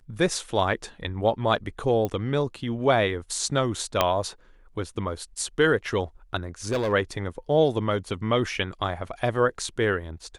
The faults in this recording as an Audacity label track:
2.050000	2.050000	pop -15 dBFS
4.010000	4.010000	pop -5 dBFS
6.700000	6.930000	clipped -21 dBFS

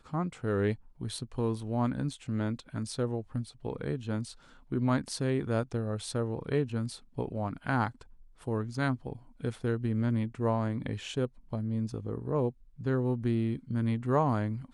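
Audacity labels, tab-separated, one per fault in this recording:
2.130000	2.130000	dropout 3.5 ms

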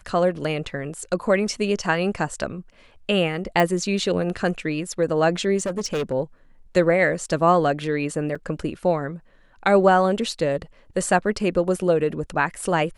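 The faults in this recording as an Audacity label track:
3.600000	3.600000	pop -8 dBFS
5.580000	6.130000	clipped -21 dBFS
8.350000	8.350000	dropout 4.9 ms

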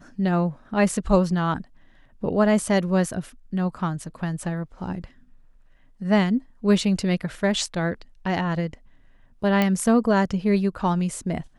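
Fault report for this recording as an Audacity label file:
9.620000	9.620000	pop -9 dBFS

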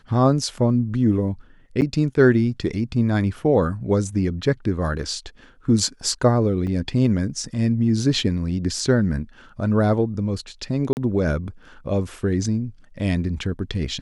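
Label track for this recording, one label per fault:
1.810000	1.820000	dropout 8.7 ms
6.670000	6.670000	dropout 3.2 ms
10.930000	10.970000	dropout 39 ms

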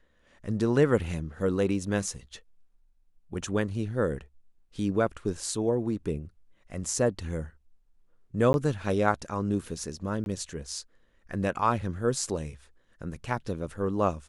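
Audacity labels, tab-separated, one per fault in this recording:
8.530000	8.540000	dropout 11 ms
10.240000	10.260000	dropout 21 ms

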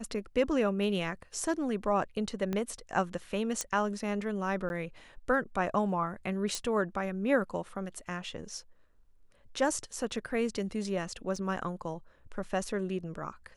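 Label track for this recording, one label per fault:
2.530000	2.530000	pop -20 dBFS
3.610000	3.610000	pop -16 dBFS
4.690000	4.700000	dropout 11 ms
6.550000	6.550000	pop
11.360000	11.360000	dropout 3.4 ms

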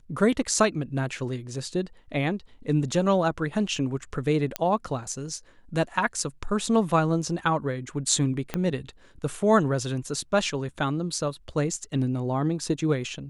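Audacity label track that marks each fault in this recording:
4.560000	4.560000	pop -9 dBFS
8.540000	8.540000	pop -13 dBFS

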